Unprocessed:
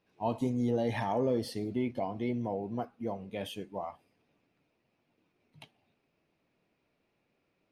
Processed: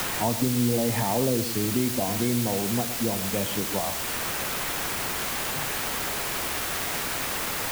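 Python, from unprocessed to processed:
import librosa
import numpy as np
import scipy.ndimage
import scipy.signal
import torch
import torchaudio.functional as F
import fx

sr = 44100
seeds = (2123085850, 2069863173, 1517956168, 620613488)

p1 = fx.low_shelf(x, sr, hz=230.0, db=7.5)
p2 = fx.quant_dither(p1, sr, seeds[0], bits=6, dither='triangular')
p3 = p2 + fx.echo_single(p2, sr, ms=115, db=-13.0, dry=0)
p4 = fx.band_squash(p3, sr, depth_pct=70)
y = p4 * 10.0 ** (4.0 / 20.0)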